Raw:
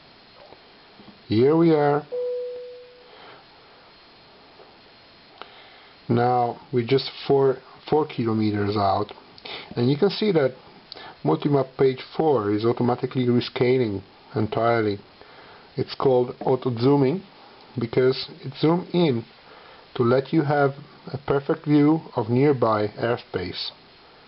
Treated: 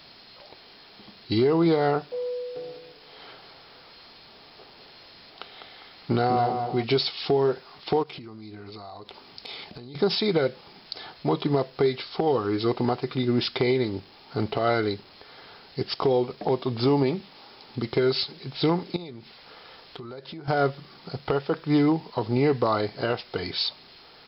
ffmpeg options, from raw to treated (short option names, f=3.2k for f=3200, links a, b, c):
-filter_complex "[0:a]asplit=3[a][b][c];[a]afade=t=out:st=2.55:d=0.02[d];[b]asplit=2[e][f];[f]adelay=202,lowpass=f=2k:p=1,volume=-5dB,asplit=2[g][h];[h]adelay=202,lowpass=f=2k:p=1,volume=0.45,asplit=2[i][j];[j]adelay=202,lowpass=f=2k:p=1,volume=0.45,asplit=2[k][l];[l]adelay=202,lowpass=f=2k:p=1,volume=0.45,asplit=2[m][n];[n]adelay=202,lowpass=f=2k:p=1,volume=0.45,asplit=2[o][p];[p]adelay=202,lowpass=f=2k:p=1,volume=0.45[q];[e][g][i][k][m][o][q]amix=inputs=7:normalize=0,afade=t=in:st=2.55:d=0.02,afade=t=out:st=6.82:d=0.02[r];[c]afade=t=in:st=6.82:d=0.02[s];[d][r][s]amix=inputs=3:normalize=0,asplit=3[t][u][v];[t]afade=t=out:st=8.02:d=0.02[w];[u]acompressor=threshold=-34dB:ratio=20:attack=3.2:release=140:knee=1:detection=peak,afade=t=in:st=8.02:d=0.02,afade=t=out:st=9.94:d=0.02[x];[v]afade=t=in:st=9.94:d=0.02[y];[w][x][y]amix=inputs=3:normalize=0,asettb=1/sr,asplit=3[z][aa][ab];[z]atrim=end=18.964[ac];[aa]atrim=start=18.96:end=20.48,asetpts=PTS-STARTPTS,afade=t=in:d=0.004:c=qsin,afade=t=out:st=1.516:d=0.004:c=qsin,acompressor=threshold=-34dB:ratio=6:attack=3.2:release=140:knee=1:detection=peak[ad];[ab]atrim=start=20.476[ae];[ac][ad]acrossfade=d=0.004:c1=hsin:c2=qsin[af];[af][ae]acrossfade=d=0.004:c1=qsin:c2=hsin,aemphasis=mode=production:type=75kf,volume=-3.5dB"